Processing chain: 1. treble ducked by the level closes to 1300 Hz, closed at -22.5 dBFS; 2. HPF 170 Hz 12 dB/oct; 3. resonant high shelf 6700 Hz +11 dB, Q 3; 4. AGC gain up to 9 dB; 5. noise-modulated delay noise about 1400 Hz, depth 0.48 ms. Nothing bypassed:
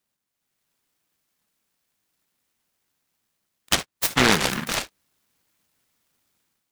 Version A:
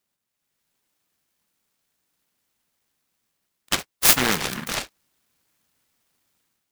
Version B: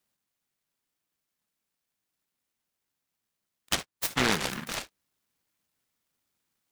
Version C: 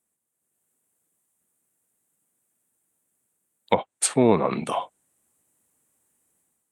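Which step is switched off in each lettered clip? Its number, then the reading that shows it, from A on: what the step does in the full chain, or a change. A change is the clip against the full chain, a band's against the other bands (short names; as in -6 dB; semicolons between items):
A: 1, 8 kHz band +7.0 dB; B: 4, loudness change -7.5 LU; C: 5, 2 kHz band -14.0 dB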